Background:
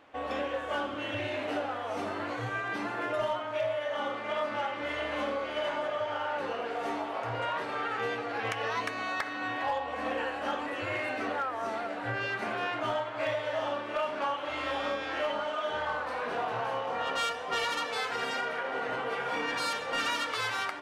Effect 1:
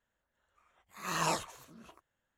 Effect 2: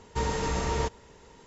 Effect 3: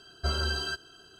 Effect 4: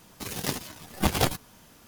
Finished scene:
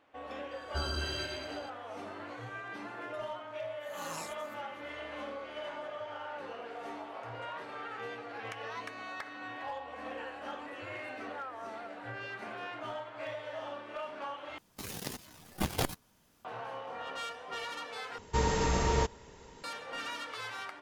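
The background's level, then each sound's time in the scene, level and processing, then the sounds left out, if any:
background -9 dB
0.51 s: add 3 -6.5 dB + backward echo that repeats 108 ms, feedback 63%, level -5 dB
2.90 s: add 1 -12.5 dB + treble shelf 6.1 kHz +10 dB
14.58 s: replace with 4 -3 dB + level held to a coarse grid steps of 13 dB
18.18 s: replace with 2

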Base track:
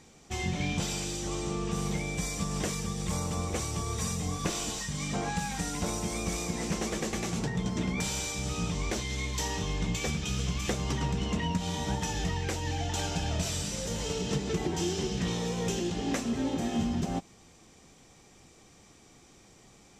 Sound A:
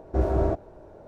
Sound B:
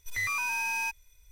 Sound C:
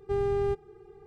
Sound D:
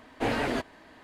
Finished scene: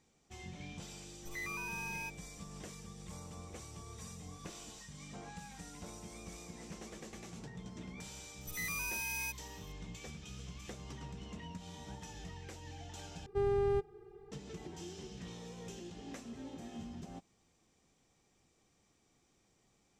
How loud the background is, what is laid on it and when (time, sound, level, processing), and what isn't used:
base track -16.5 dB
1.19 s: add B -11.5 dB
8.41 s: add B -0.5 dB + pre-emphasis filter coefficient 0.8
13.26 s: replace with C -4 dB
not used: A, D

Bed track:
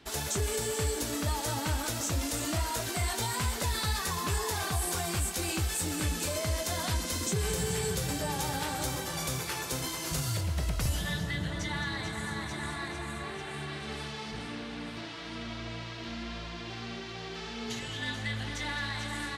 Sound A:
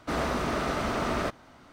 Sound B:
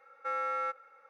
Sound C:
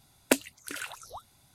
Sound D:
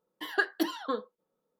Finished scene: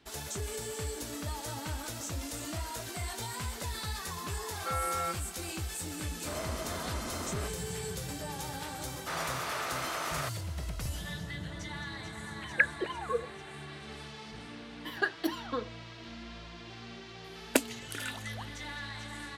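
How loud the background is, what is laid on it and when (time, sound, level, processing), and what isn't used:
bed track -6.5 dB
4.41 s: add B -0.5 dB
6.18 s: add A -11.5 dB
8.99 s: add A -2 dB + Bessel high-pass 980 Hz
12.21 s: add D -0.5 dB + formants replaced by sine waves
14.64 s: add D -3 dB
17.24 s: add C -2.5 dB

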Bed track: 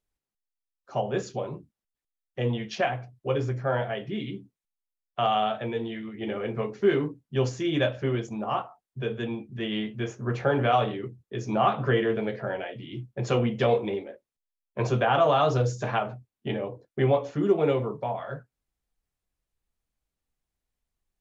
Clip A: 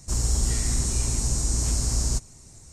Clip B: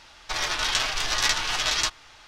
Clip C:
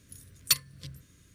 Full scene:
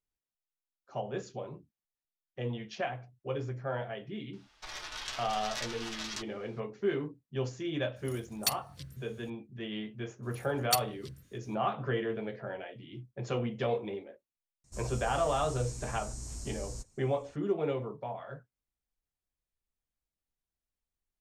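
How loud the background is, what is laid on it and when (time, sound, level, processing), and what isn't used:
bed track -8.5 dB
4.33 s: add B -15.5 dB
7.96 s: add C -2.5 dB + peak limiter -15.5 dBFS
10.22 s: add C -5 dB, fades 0.02 s + crackling interface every 0.72 s, samples 2048, zero, from 0.44 s
14.64 s: add A -17.5 dB

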